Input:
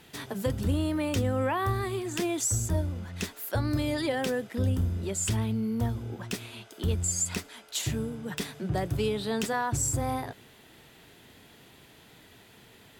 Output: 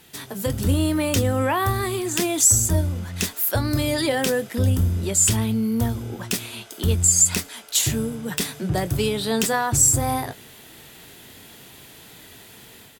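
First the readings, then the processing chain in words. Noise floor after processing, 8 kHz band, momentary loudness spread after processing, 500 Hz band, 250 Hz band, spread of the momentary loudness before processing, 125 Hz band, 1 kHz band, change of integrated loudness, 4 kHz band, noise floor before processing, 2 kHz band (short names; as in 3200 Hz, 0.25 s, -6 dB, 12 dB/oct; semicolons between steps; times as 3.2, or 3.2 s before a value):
-46 dBFS, +13.5 dB, 11 LU, +6.0 dB, +6.5 dB, 9 LU, +6.5 dB, +6.5 dB, +9.0 dB, +9.5 dB, -55 dBFS, +7.5 dB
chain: high shelf 5500 Hz +10.5 dB; AGC gain up to 6.5 dB; doubler 22 ms -13.5 dB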